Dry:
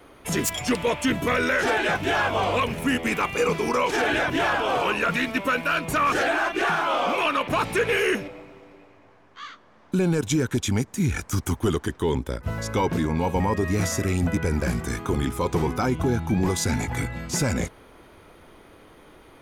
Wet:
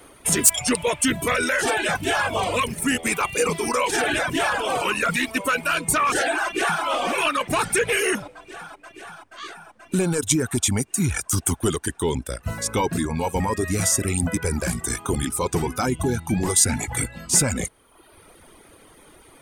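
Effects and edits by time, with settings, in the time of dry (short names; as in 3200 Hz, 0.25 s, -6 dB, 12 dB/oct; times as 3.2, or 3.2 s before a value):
3.02–3.81 echo throw 0.4 s, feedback 85%, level -16.5 dB
6.43–6.83 echo throw 0.48 s, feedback 80%, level -10 dB
whole clip: bell 8800 Hz +12.5 dB 0.3 oct; reverb removal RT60 0.9 s; high shelf 4100 Hz +7.5 dB; gain +1 dB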